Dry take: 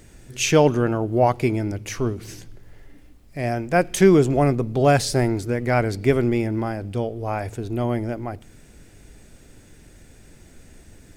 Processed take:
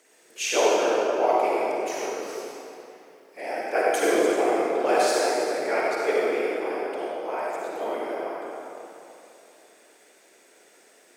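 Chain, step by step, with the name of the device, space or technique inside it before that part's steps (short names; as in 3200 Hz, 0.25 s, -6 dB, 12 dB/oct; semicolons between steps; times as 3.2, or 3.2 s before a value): whispering ghost (whisperiser; HPF 400 Hz 24 dB/oct; reverb RT60 3.0 s, pre-delay 45 ms, DRR -5 dB); gain -6.5 dB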